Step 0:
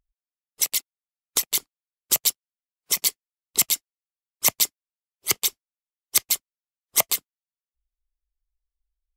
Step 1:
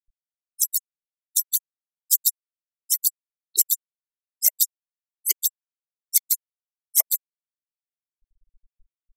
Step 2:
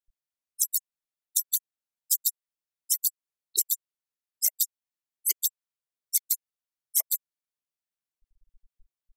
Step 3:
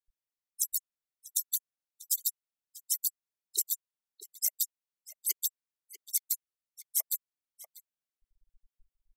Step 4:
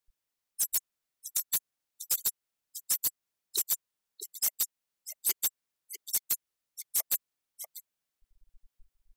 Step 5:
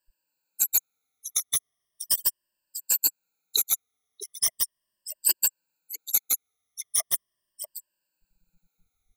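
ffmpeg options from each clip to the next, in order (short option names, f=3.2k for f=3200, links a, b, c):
-af "crystalizer=i=2.5:c=0,acompressor=mode=upward:threshold=-8dB:ratio=2.5,afftfilt=real='re*gte(hypot(re,im),0.251)':imag='im*gte(hypot(re,im),0.251)':win_size=1024:overlap=0.75,volume=-10.5dB"
-af "acompressor=threshold=-21dB:ratio=6"
-filter_complex "[0:a]asplit=2[a][b];[b]adelay=641.4,volume=-8dB,highshelf=f=4k:g=-14.4[c];[a][c]amix=inputs=2:normalize=0,volume=-5dB"
-af "alimiter=limit=-16.5dB:level=0:latency=1:release=161,asoftclip=type=hard:threshold=-30dB,volume=7dB"
-af "afftfilt=real='re*pow(10,23/40*sin(2*PI*(1.3*log(max(b,1)*sr/1024/100)/log(2)-(-0.38)*(pts-256)/sr)))':imag='im*pow(10,23/40*sin(2*PI*(1.3*log(max(b,1)*sr/1024/100)/log(2)-(-0.38)*(pts-256)/sr)))':win_size=1024:overlap=0.75"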